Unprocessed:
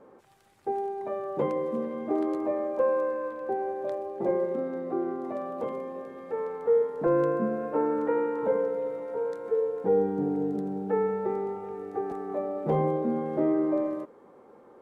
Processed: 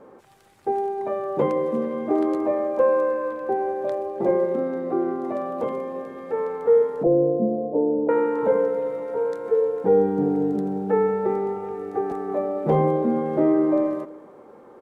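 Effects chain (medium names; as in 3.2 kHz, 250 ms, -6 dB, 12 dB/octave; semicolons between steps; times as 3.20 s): 7.03–8.09 s: elliptic low-pass 730 Hz, stop band 60 dB; on a send: feedback delay 311 ms, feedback 31%, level -22.5 dB; on the sum: trim +6 dB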